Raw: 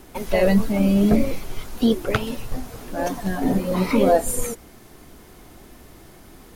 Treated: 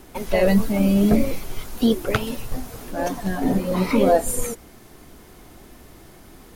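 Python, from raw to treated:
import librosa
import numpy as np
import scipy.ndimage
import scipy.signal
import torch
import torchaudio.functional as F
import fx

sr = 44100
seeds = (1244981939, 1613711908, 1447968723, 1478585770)

y = fx.high_shelf(x, sr, hz=8100.0, db=5.0, at=(0.48, 2.91))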